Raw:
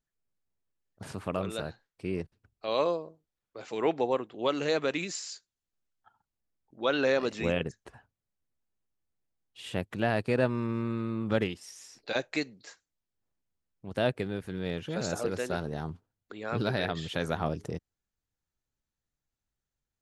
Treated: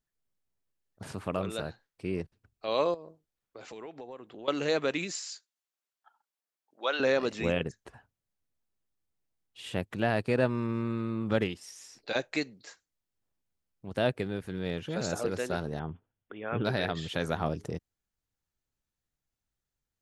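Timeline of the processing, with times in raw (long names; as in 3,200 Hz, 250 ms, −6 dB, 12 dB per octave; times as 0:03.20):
0:02.94–0:04.48: downward compressor, threshold −41 dBFS
0:05.19–0:07.00: high-pass filter 580 Hz
0:15.79–0:16.65: Chebyshev low-pass filter 3,500 Hz, order 10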